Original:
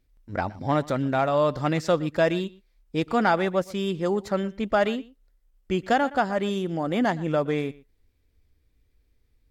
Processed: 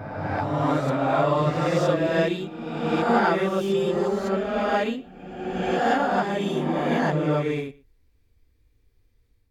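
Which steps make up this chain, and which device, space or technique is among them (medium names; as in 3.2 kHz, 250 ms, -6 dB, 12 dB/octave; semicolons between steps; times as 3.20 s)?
reverse reverb (reverse; reverberation RT60 1.6 s, pre-delay 11 ms, DRR -5 dB; reverse); trim -4.5 dB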